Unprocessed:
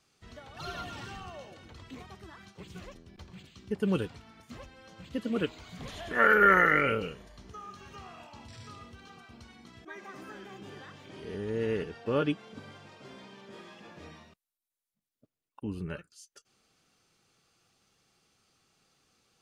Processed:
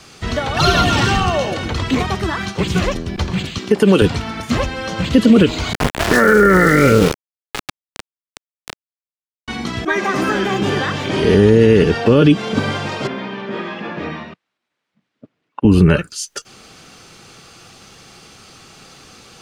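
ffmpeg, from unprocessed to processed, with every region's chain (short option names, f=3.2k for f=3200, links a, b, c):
-filter_complex "[0:a]asettb=1/sr,asplit=3[a][b][c];[a]atrim=end=3.584[d];[b]atrim=start=3.58:end=4.02,asetpts=PTS-STARTPTS,afade=t=in:d=0.004:c=qsin,afade=t=out:st=0.436:d=0.004:c=qsin,highpass=290,acompressor=threshold=-34dB:ratio=2.5:attack=3.2:release=140:knee=1:detection=peak[e];[c]atrim=start=4.016[f];[d][e]acrossfade=d=0.004:c1=hsin:c2=qsin[g];[g][f]acrossfade=d=0.004:c1=qsin:c2=hsin,asettb=1/sr,asplit=3[h][i][j];[h]atrim=end=5.734[k];[i]atrim=start=5.73:end=9.48,asetpts=PTS-STARTPTS,afade=t=in:d=0.004:c=qsin,afade=t=out:st=3.746:d=0.004:c=qsin,lowpass=f=2k:w=0.5412,lowpass=f=2k:w=1.3066,aeval=exprs='val(0)*gte(abs(val(0)),0.0133)':c=same[l];[j]atrim=start=9.476[m];[k][l]acrossfade=d=0.004:c1=hsin:c2=qsin[n];[n][m]acrossfade=d=0.004:c1=qsin:c2=hsin,asettb=1/sr,asplit=3[o][p][q];[o]atrim=end=13.074[r];[p]atrim=start=13.07:end=15.65,asetpts=PTS-STARTPTS,afade=t=in:d=0.004:c=qsin,afade=t=out:st=2.576:d=0.004:c=qsin,highpass=180,lowpass=2.2k,equalizer=f=660:w=0.44:g=-6[s];[q]atrim=start=15.646[t];[r][s]acrossfade=d=0.004:c1=hsin:c2=qsin[u];[u][t]acrossfade=d=0.004:c1=qsin:c2=hsin,highshelf=f=11k:g=-8,acrossover=split=410|3000[v][w][x];[w]acompressor=threshold=-46dB:ratio=2[y];[v][y][x]amix=inputs=3:normalize=0,alimiter=level_in=29.5dB:limit=-1dB:release=50:level=0:latency=1,volume=-1dB"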